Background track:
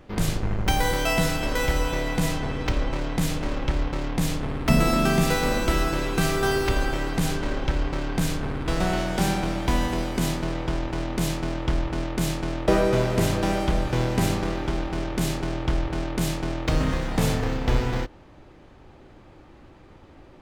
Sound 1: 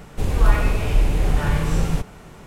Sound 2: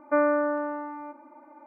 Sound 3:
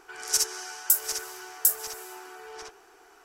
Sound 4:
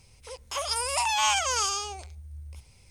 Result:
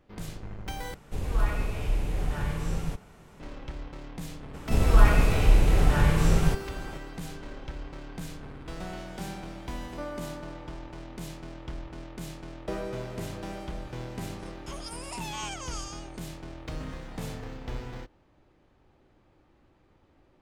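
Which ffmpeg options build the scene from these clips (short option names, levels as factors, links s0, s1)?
-filter_complex "[1:a]asplit=2[s0][s1];[0:a]volume=0.2,asplit=2[s2][s3];[s2]atrim=end=0.944[s4];[s0]atrim=end=2.46,asetpts=PTS-STARTPTS,volume=0.316[s5];[s3]atrim=start=3.396[s6];[s1]atrim=end=2.46,asetpts=PTS-STARTPTS,volume=0.841,afade=t=in:d=0.02,afade=t=out:st=2.44:d=0.02,adelay=199773S[s7];[2:a]atrim=end=1.66,asetpts=PTS-STARTPTS,volume=0.158,afade=t=in:d=0.004:c=hsin,afade=t=out:st=1.656:d=0.004:c=hsin,adelay=434826S[s8];[4:a]atrim=end=2.9,asetpts=PTS-STARTPTS,volume=0.224,afade=t=in:d=0.004:c=hsin,afade=t=out:st=2.896:d=0.004:c=hsin,adelay=14150[s9];[s4][s5]acrossfade=d=0.004:c1=hsin:c2=hsin[s10];[s10][s6]acrossfade=d=0.004:c1=hsin:c2=hsin[s11];[s11][s7][s8][s9]amix=inputs=4:normalize=0"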